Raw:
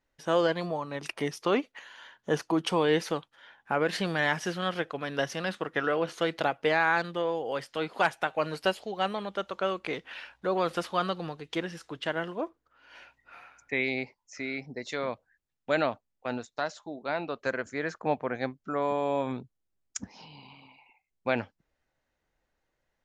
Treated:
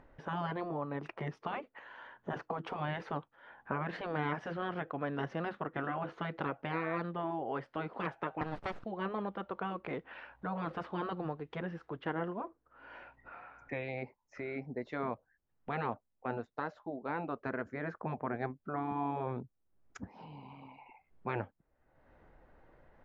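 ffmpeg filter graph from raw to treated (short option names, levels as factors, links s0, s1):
-filter_complex "[0:a]asettb=1/sr,asplit=3[s0][s1][s2];[s0]atrim=end=8.414[s3];[s1]atrim=start=8.41:end=8.85,asetpts=PTS-STARTPTS,afade=t=in:d=0.004:c=qsin,afade=t=out:st=0.436:d=0.004:c=qsin,highshelf=f=3900:g=8.5,aeval=exprs='abs(val(0))':c=same[s4];[s2]atrim=start=8.846[s5];[s3][s4]acrossfade=d=0.004:c1=hsin:c2=qsin[s6];[s6][s5]acrossfade=d=0.004:c1=qsin:c2=hsin,afftfilt=real='re*lt(hypot(re,im),0.158)':imag='im*lt(hypot(re,im),0.158)':win_size=1024:overlap=0.75,lowpass=1300,acompressor=mode=upward:threshold=0.00631:ratio=2.5"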